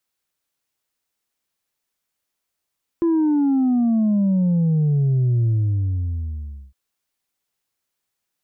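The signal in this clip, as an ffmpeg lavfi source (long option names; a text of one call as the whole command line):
ffmpeg -f lavfi -i "aevalsrc='0.168*clip((3.71-t)/1.28,0,1)*tanh(1.26*sin(2*PI*340*3.71/log(65/340)*(exp(log(65/340)*t/3.71)-1)))/tanh(1.26)':duration=3.71:sample_rate=44100" out.wav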